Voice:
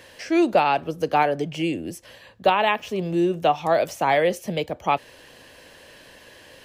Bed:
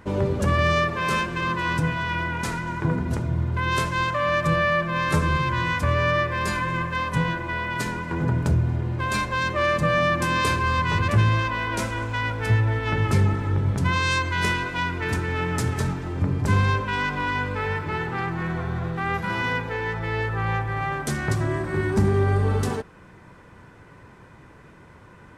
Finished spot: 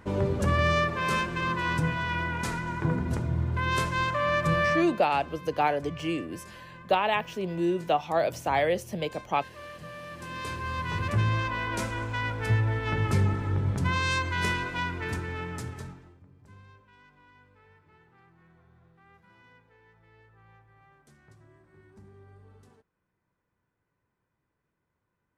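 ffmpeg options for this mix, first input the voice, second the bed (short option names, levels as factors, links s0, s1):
-filter_complex "[0:a]adelay=4450,volume=0.531[s0];[1:a]volume=5.01,afade=t=out:st=4.72:d=0.27:silence=0.11885,afade=t=in:st=10.07:d=1.49:silence=0.133352,afade=t=out:st=14.75:d=1.45:silence=0.0398107[s1];[s0][s1]amix=inputs=2:normalize=0"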